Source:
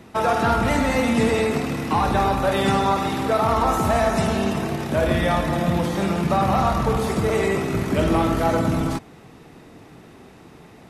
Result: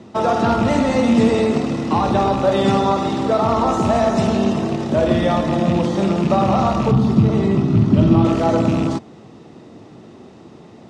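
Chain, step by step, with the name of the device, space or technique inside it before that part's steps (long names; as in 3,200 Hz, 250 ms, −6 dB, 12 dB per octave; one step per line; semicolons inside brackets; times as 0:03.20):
car door speaker with a rattle (loose part that buzzes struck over −21 dBFS, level −21 dBFS; loudspeaker in its box 81–7,400 Hz, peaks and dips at 110 Hz +4 dB, 220 Hz +6 dB, 350 Hz +5 dB, 580 Hz +4 dB, 1,600 Hz −6 dB, 2,300 Hz −6 dB)
0:06.91–0:08.25: graphic EQ with 10 bands 125 Hz +10 dB, 250 Hz +4 dB, 500 Hz −9 dB, 2,000 Hz −6 dB, 8,000 Hz −12 dB
level +1.5 dB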